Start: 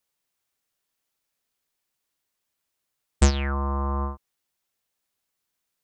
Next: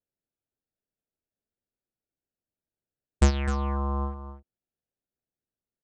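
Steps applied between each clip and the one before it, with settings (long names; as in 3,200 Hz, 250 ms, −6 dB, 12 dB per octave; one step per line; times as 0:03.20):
adaptive Wiener filter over 41 samples
high-shelf EQ 4,100 Hz −6.5 dB
on a send: single-tap delay 256 ms −11.5 dB
on the sum: level −1.5 dB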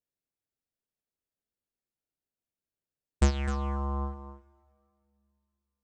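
dense smooth reverb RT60 2.5 s, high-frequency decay 0.8×, DRR 19.5 dB
level −3.5 dB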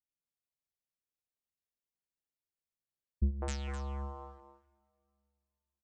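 three-band delay without the direct sound lows, mids, highs 200/260 ms, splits 310/1,300 Hz
level −6.5 dB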